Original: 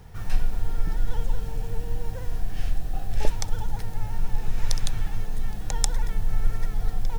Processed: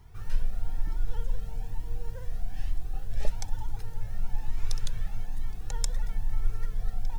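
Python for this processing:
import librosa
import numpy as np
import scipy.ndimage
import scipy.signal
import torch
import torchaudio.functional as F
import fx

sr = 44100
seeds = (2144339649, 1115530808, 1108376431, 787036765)

y = fx.comb_cascade(x, sr, direction='rising', hz=1.1)
y = y * 10.0 ** (-4.0 / 20.0)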